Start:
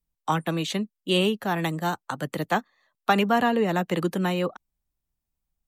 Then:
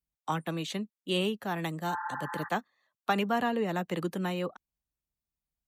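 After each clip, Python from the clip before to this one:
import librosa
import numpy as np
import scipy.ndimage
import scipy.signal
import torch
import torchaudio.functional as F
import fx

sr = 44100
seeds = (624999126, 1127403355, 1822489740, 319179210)

y = fx.spec_repair(x, sr, seeds[0], start_s=1.92, length_s=0.54, low_hz=820.0, high_hz=2000.0, source='both')
y = scipy.signal.sosfilt(scipy.signal.butter(2, 41.0, 'highpass', fs=sr, output='sos'), y)
y = F.gain(torch.from_numpy(y), -7.0).numpy()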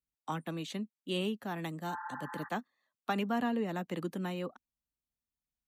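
y = fx.peak_eq(x, sr, hz=250.0, db=7.0, octaves=0.54)
y = F.gain(torch.from_numpy(y), -6.0).numpy()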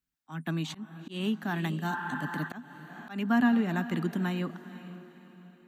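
y = fx.graphic_eq_31(x, sr, hz=(160, 250, 500, 1600, 10000), db=(6, 7, -12, 7, -5))
y = fx.echo_diffused(y, sr, ms=470, feedback_pct=43, wet_db=-14)
y = fx.auto_swell(y, sr, attack_ms=211.0)
y = F.gain(torch.from_numpy(y), 4.0).numpy()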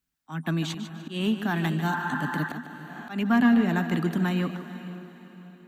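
y = 10.0 ** (-17.5 / 20.0) * np.tanh(x / 10.0 ** (-17.5 / 20.0))
y = fx.echo_feedback(y, sr, ms=149, feedback_pct=34, wet_db=-11)
y = F.gain(torch.from_numpy(y), 5.0).numpy()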